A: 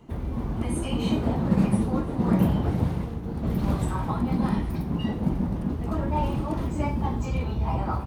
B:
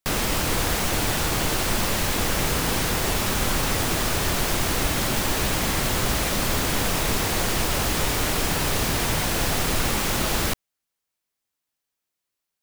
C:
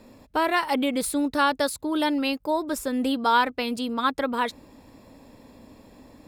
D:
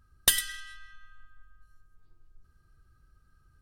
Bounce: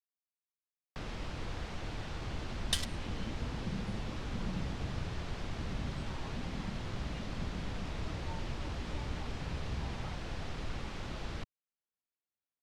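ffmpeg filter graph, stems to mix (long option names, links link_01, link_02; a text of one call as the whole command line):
ffmpeg -i stem1.wav -i stem2.wav -i stem3.wav -i stem4.wav -filter_complex "[0:a]adelay=2150,volume=-14.5dB[link_01];[1:a]lowpass=frequency=2100:poles=1,adelay=900,volume=-12.5dB[link_02];[3:a]acrusher=bits=3:mix=0:aa=0.000001,adelay=2450,volume=-3.5dB[link_03];[link_01][link_02][link_03]amix=inputs=3:normalize=0,lowpass=5100,acrossover=split=160|3000[link_04][link_05][link_06];[link_05]acompressor=threshold=-54dB:ratio=1.5[link_07];[link_04][link_07][link_06]amix=inputs=3:normalize=0" out.wav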